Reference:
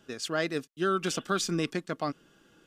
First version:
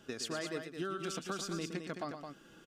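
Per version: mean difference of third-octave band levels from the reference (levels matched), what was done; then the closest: 7.5 dB: compressor 5:1, threshold -39 dBFS, peak gain reduction 14.5 dB; on a send: loudspeakers at several distances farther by 40 m -9 dB, 74 m -7 dB; on the sum: gain +1.5 dB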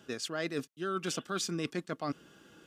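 3.5 dB: HPF 53 Hz; reverse; compressor, threshold -35 dBFS, peak gain reduction 12 dB; reverse; gain +3.5 dB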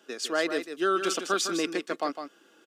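5.0 dB: HPF 280 Hz 24 dB/oct; echo 0.156 s -8.5 dB; gain +2.5 dB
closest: second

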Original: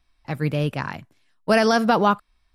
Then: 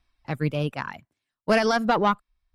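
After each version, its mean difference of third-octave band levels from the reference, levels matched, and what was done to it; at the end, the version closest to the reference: 2.5 dB: reverb removal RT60 1.1 s; high shelf 8300 Hz -6.5 dB; tube stage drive 11 dB, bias 0.45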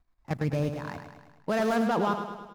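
6.0 dB: median filter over 15 samples; level quantiser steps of 13 dB; on a send: feedback echo 0.105 s, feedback 57%, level -8 dB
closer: first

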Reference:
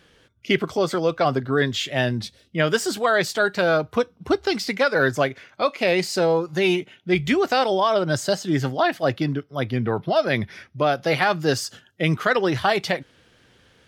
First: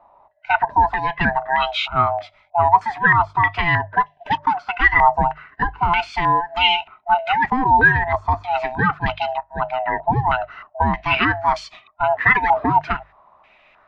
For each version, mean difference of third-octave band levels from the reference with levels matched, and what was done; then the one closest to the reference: 13.5 dB: band-swap scrambler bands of 500 Hz; notches 50/100/150 Hz; stepped low-pass 3.2 Hz 890–2900 Hz; gain -1 dB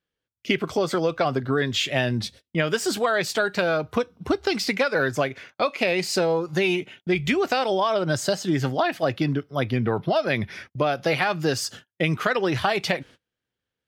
2.0 dB: gate -45 dBFS, range -32 dB; dynamic EQ 2500 Hz, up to +5 dB, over -43 dBFS, Q 5.6; compressor, threshold -21 dBFS, peak gain reduction 8.5 dB; gain +2.5 dB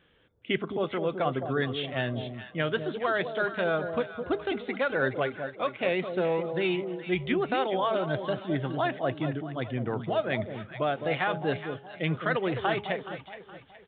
8.5 dB: de-hum 207 Hz, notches 4; on a send: echo with dull and thin repeats by turns 0.21 s, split 850 Hz, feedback 60%, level -7 dB; on the sum: downsampling 8000 Hz; gain -8 dB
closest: second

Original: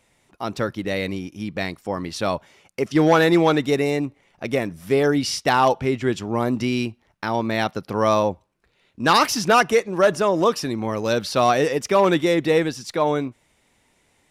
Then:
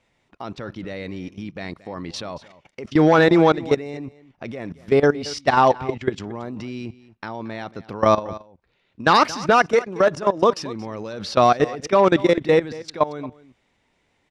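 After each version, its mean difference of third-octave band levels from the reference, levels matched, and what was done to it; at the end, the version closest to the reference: 6.5 dB: LPF 4800 Hz 12 dB/oct; dynamic EQ 2900 Hz, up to -4 dB, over -37 dBFS, Q 1.9; level quantiser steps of 18 dB; on a send: echo 0.227 s -18.5 dB; on the sum: gain +4.5 dB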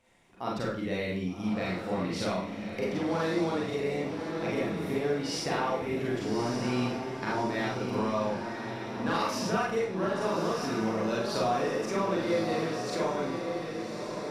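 9.0 dB: high shelf 5100 Hz -8.5 dB; compressor, threshold -27 dBFS, peak gain reduction 14.5 dB; on a send: diffused feedback echo 1.178 s, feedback 52%, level -5.5 dB; on the sum: Schroeder reverb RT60 0.44 s, combs from 33 ms, DRR -5 dB; gain -6.5 dB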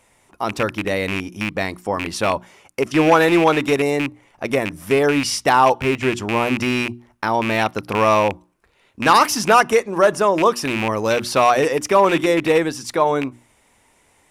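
3.5 dB: rattling part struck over -26 dBFS, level -15 dBFS; fifteen-band EQ 160 Hz -4 dB, 1000 Hz +4 dB, 4000 Hz -4 dB, 10000 Hz +4 dB; in parallel at -2.5 dB: compressor, threshold -24 dBFS, peak gain reduction 13.5 dB; on the sum: notches 60/120/180/240/300/360 Hz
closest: third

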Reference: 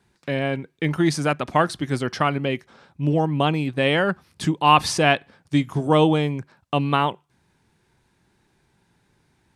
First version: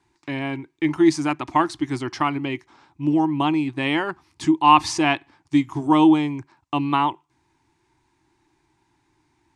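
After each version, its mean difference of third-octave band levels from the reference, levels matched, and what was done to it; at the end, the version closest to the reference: 4.5 dB: EQ curve 130 Hz 0 dB, 200 Hz -10 dB, 320 Hz +12 dB, 490 Hz -12 dB, 930 Hz +9 dB, 1500 Hz -2 dB, 2100 Hz +4 dB, 3400 Hz 0 dB, 7000 Hz +4 dB, 13000 Hz -9 dB; gain -4 dB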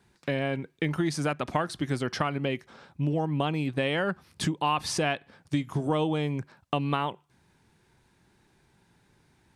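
2.5 dB: compressor 4:1, threshold -25 dBFS, peak gain reduction 13 dB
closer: second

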